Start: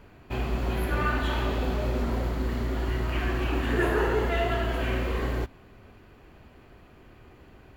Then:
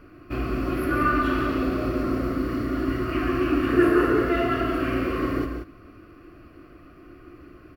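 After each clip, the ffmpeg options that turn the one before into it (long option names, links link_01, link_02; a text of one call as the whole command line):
ffmpeg -i in.wav -filter_complex "[0:a]superequalizer=6b=3.55:9b=0.316:10b=2.24:13b=0.447:15b=0.398,asplit=2[link_01][link_02];[link_02]aecho=0:1:142.9|180.8:0.355|0.398[link_03];[link_01][link_03]amix=inputs=2:normalize=0" out.wav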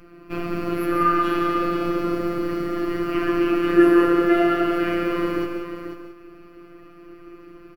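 ffmpeg -i in.wav -af "afftfilt=real='hypot(re,im)*cos(PI*b)':imag='0':win_size=1024:overlap=0.75,aecho=1:1:490:0.355,volume=5dB" out.wav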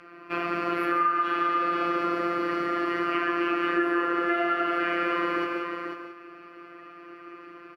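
ffmpeg -i in.wav -af "bandpass=frequency=1500:width_type=q:width=0.79:csg=0,acompressor=threshold=-29dB:ratio=6,volume=7dB" out.wav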